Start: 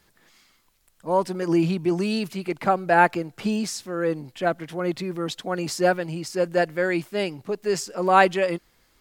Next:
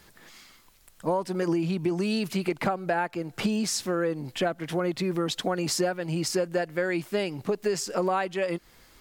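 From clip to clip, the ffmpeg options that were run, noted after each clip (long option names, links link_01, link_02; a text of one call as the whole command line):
ffmpeg -i in.wav -af "acompressor=threshold=-30dB:ratio=16,volume=7dB" out.wav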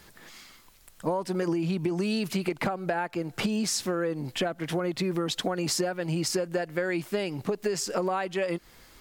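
ffmpeg -i in.wav -af "acompressor=threshold=-26dB:ratio=6,volume=2dB" out.wav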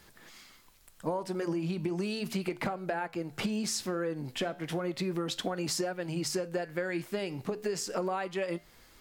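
ffmpeg -i in.wav -af "flanger=delay=8.5:depth=5.4:regen=-82:speed=0.34:shape=triangular" out.wav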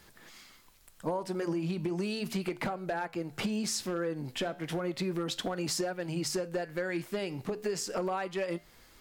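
ffmpeg -i in.wav -af "asoftclip=type=hard:threshold=-25dB" out.wav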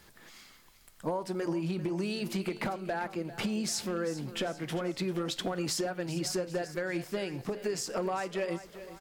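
ffmpeg -i in.wav -af "aecho=1:1:395|790|1185|1580|1975:0.188|0.0923|0.0452|0.0222|0.0109" out.wav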